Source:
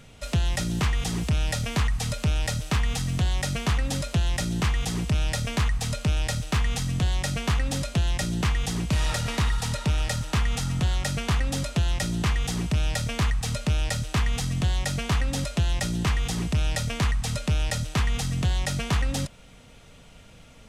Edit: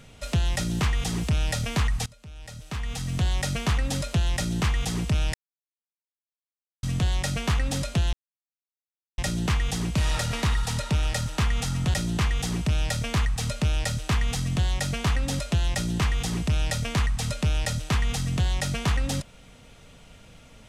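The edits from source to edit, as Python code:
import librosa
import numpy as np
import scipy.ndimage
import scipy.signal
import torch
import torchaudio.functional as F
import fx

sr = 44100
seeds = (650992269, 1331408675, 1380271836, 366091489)

y = fx.edit(x, sr, fx.fade_in_from(start_s=2.06, length_s=1.19, curve='qua', floor_db=-23.0),
    fx.silence(start_s=5.34, length_s=1.49),
    fx.insert_silence(at_s=8.13, length_s=1.05),
    fx.cut(start_s=10.89, length_s=1.1), tone=tone)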